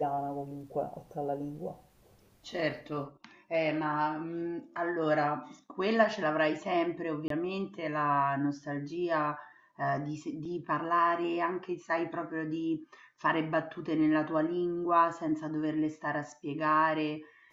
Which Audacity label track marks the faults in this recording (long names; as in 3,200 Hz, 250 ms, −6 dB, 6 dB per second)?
7.280000	7.300000	drop-out 23 ms
10.450000	10.450000	drop-out 3.7 ms